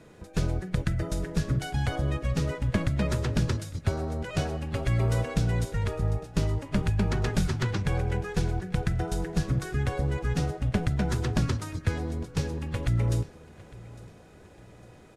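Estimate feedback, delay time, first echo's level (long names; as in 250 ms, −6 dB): 39%, 855 ms, −21.0 dB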